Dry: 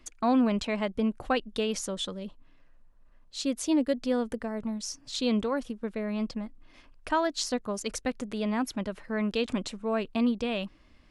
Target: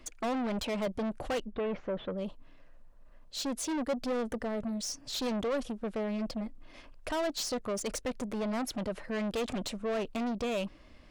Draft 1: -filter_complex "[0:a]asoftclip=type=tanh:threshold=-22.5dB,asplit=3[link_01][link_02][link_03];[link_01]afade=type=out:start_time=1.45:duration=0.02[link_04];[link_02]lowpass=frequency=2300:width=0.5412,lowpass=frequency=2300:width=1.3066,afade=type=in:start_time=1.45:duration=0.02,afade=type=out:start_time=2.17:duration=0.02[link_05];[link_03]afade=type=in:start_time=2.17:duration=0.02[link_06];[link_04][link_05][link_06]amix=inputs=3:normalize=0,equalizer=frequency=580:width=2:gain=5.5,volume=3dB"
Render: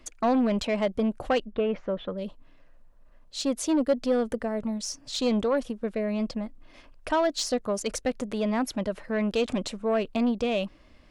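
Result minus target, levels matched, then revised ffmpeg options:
soft clipping: distortion −10 dB
-filter_complex "[0:a]asoftclip=type=tanh:threshold=-34.5dB,asplit=3[link_01][link_02][link_03];[link_01]afade=type=out:start_time=1.45:duration=0.02[link_04];[link_02]lowpass=frequency=2300:width=0.5412,lowpass=frequency=2300:width=1.3066,afade=type=in:start_time=1.45:duration=0.02,afade=type=out:start_time=2.17:duration=0.02[link_05];[link_03]afade=type=in:start_time=2.17:duration=0.02[link_06];[link_04][link_05][link_06]amix=inputs=3:normalize=0,equalizer=frequency=580:width=2:gain=5.5,volume=3dB"

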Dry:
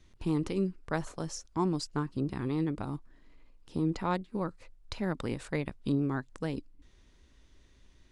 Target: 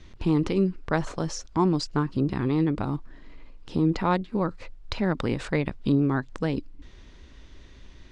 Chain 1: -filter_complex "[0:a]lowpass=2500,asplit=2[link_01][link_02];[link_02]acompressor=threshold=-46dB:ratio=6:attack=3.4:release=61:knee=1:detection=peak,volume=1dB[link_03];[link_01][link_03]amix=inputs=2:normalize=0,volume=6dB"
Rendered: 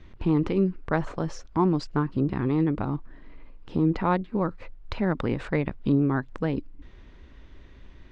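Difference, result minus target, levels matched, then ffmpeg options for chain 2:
4,000 Hz band −7.0 dB
-filter_complex "[0:a]lowpass=5200,asplit=2[link_01][link_02];[link_02]acompressor=threshold=-46dB:ratio=6:attack=3.4:release=61:knee=1:detection=peak,volume=1dB[link_03];[link_01][link_03]amix=inputs=2:normalize=0,volume=6dB"

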